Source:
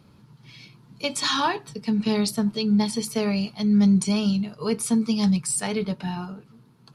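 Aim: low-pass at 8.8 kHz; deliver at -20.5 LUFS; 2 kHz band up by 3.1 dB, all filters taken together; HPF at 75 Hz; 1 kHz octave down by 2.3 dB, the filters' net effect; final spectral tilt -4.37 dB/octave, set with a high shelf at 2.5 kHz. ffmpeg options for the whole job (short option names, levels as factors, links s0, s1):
-af "highpass=75,lowpass=8800,equalizer=f=1000:t=o:g=-4,equalizer=f=2000:t=o:g=3.5,highshelf=f=2500:g=3,volume=1.41"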